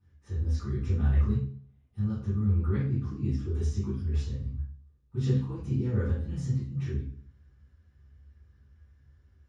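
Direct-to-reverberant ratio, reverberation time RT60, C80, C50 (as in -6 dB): -15.0 dB, 0.45 s, 7.5 dB, 1.5 dB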